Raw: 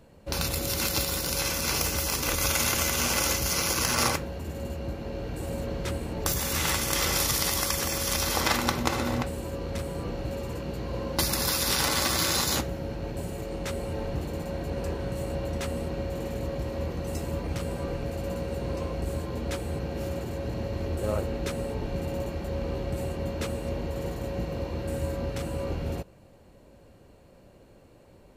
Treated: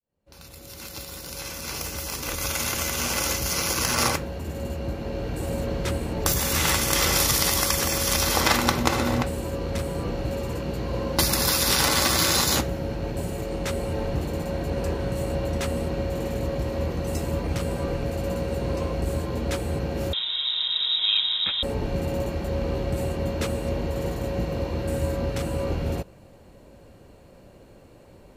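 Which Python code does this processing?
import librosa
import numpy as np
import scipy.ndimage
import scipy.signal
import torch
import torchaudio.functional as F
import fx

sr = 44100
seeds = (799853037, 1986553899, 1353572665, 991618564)

y = fx.fade_in_head(x, sr, length_s=5.27)
y = fx.freq_invert(y, sr, carrier_hz=3800, at=(20.13, 21.63))
y = F.gain(torch.from_numpy(y), 4.5).numpy()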